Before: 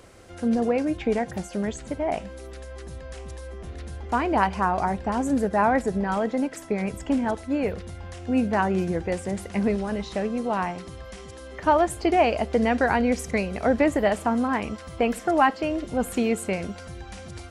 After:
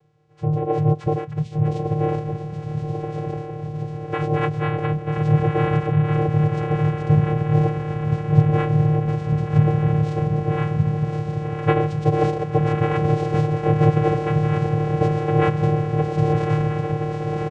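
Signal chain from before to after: in parallel at -1 dB: compression, threshold -33 dBFS, peak gain reduction 17.5 dB; on the sum: comb 6.4 ms, depth 50%; on a send: echo that smears into a reverb 1144 ms, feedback 68%, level -4 dB; on the sum: spectral noise reduction 17 dB; vocoder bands 4, square 152 Hz; harmony voices -7 st -13 dB, -5 st -6 dB, -4 st -13 dB

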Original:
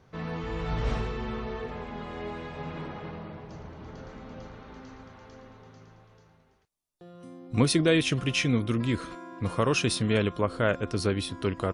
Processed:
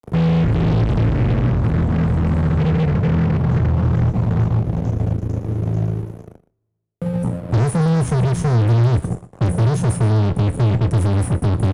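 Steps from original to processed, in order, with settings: inverse Chebyshev band-stop 490–4100 Hz, stop band 60 dB; gate with hold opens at -56 dBFS; high-pass 84 Hz 12 dB/octave; compression 2:1, threshold -39 dBFS, peak gain reduction 8 dB; fuzz box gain 55 dB, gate -59 dBFS; distance through air 78 m; doubling 25 ms -13.5 dB; on a send: delay 120 ms -19.5 dB; on the sum: two-slope reverb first 0.2 s, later 1.6 s, from -28 dB, DRR 18.5 dB; three bands compressed up and down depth 40%; trim -2 dB

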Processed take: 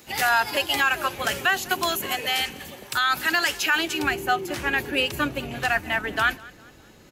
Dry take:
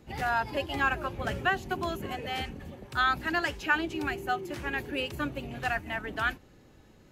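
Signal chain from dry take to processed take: tilt EQ +4 dB/octave, from 3.98 s +1.5 dB/octave; peak limiter -20 dBFS, peak gain reduction 9 dB; feedback delay 203 ms, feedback 39%, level -22.5 dB; trim +8.5 dB

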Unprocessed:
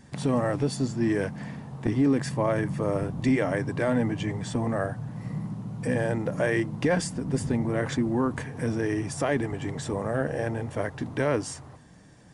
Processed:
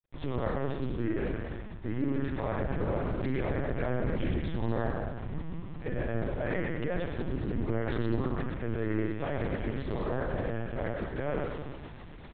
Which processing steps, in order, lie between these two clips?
jump at every zero crossing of -36 dBFS; expander -25 dBFS; in parallel at +2 dB: compression 10:1, threshold -34 dBFS, peak gain reduction 16 dB; on the sum: peak limiter -17.5 dBFS, peak gain reduction 7.5 dB; reverse; upward compressor, threshold -30 dBFS; reverse; small samples zeroed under -56 dBFS; bouncing-ball echo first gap 110 ms, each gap 0.75×, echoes 5; reverberation RT60 1.0 s, pre-delay 44 ms, DRR 7.5 dB; LPC vocoder at 8 kHz pitch kept; loudspeaker Doppler distortion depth 0.3 ms; trim -7.5 dB

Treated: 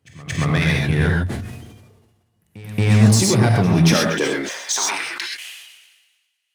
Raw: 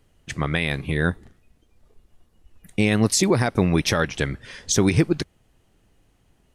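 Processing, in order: high-pass 53 Hz 12 dB/octave; waveshaping leveller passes 2; compression 2.5:1, threshold -15 dBFS, peak gain reduction 4 dB; high-pass sweep 98 Hz -> 2.6 kHz, 3.53–5.34 s; pre-echo 227 ms -19 dB; gated-style reverb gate 150 ms rising, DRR -0.5 dB; decay stretcher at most 44 dB/s; trim -4.5 dB

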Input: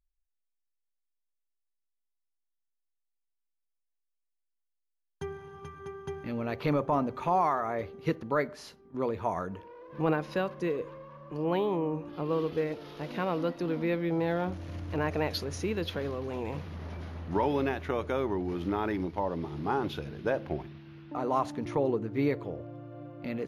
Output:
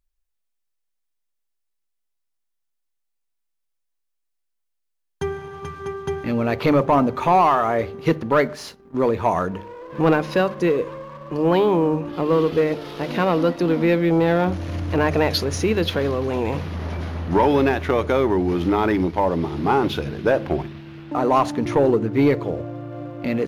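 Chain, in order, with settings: hum notches 50/100/150/200 Hz; waveshaping leveller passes 1; trim +8.5 dB

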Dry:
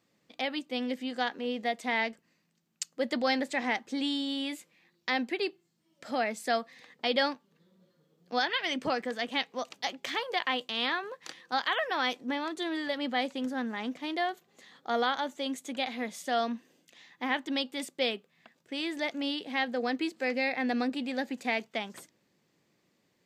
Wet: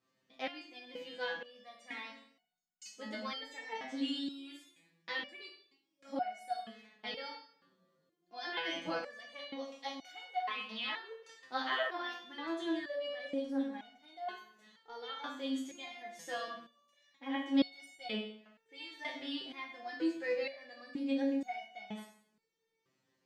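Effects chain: treble shelf 7.9 kHz -8 dB; plate-style reverb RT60 0.62 s, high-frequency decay 0.9×, DRR 0 dB; resonator arpeggio 2.1 Hz 130–740 Hz; trim +3 dB

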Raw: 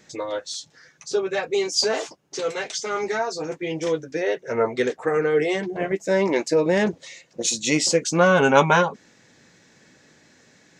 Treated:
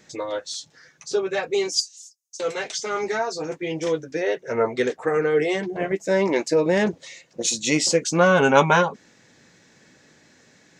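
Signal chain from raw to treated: 1.80–2.40 s: inverse Chebyshev high-pass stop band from 1.1 kHz, stop band 80 dB

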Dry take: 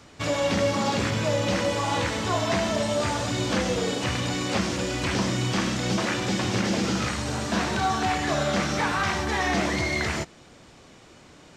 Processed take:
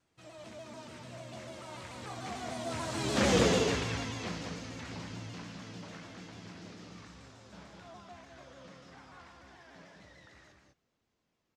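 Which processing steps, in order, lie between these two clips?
Doppler pass-by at 3.36 s, 35 m/s, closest 5.6 m; loudspeakers at several distances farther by 22 m -10 dB, 70 m -4 dB; vibrato with a chosen wave saw down 6.8 Hz, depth 100 cents

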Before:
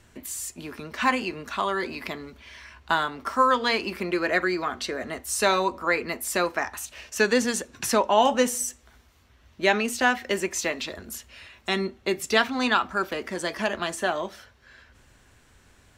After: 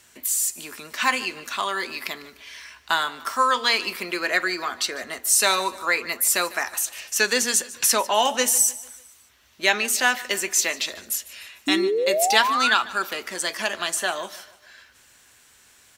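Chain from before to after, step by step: tilt EQ +3.5 dB/octave; painted sound rise, 11.67–12.74 s, 280–1600 Hz -22 dBFS; on a send: feedback delay 149 ms, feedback 47%, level -19 dB

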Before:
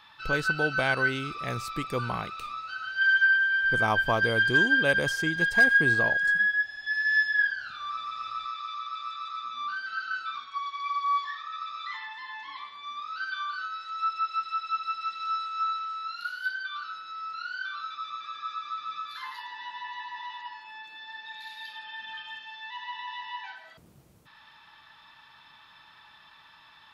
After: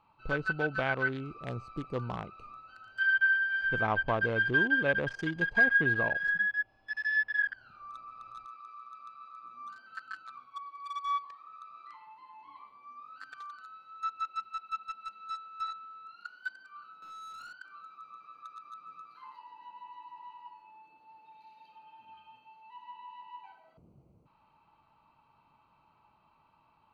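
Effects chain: local Wiener filter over 25 samples; low-pass that closes with the level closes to 2.6 kHz, closed at -22.5 dBFS; 17.02–17.53 s: waveshaping leveller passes 3; trim -3 dB

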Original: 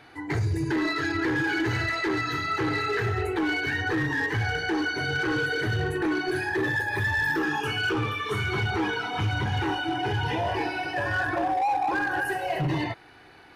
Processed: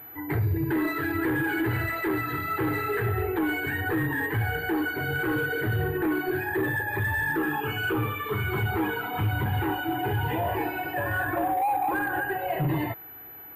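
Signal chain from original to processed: distance through air 370 m; class-D stage that switches slowly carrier 12 kHz; trim +1 dB

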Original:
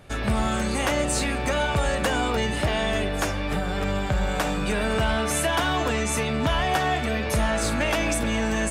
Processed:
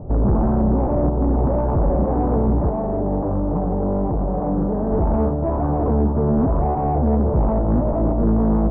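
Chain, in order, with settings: sine folder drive 7 dB, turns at -15 dBFS; 2.69–4.92 s: bass shelf 100 Hz -8.5 dB; peak limiter -17 dBFS, peak gain reduction 4.5 dB; steep low-pass 930 Hz 36 dB/octave; saturation -12 dBFS, distortion -30 dB; bass shelf 470 Hz +9.5 dB; loudspeaker Doppler distortion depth 0.43 ms; trim -2 dB

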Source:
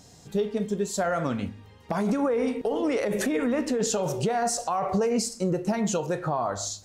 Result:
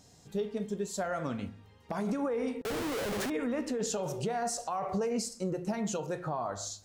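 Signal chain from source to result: 2.62–3.30 s: Schmitt trigger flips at -34 dBFS; de-hum 171.3 Hz, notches 11; trim -7 dB

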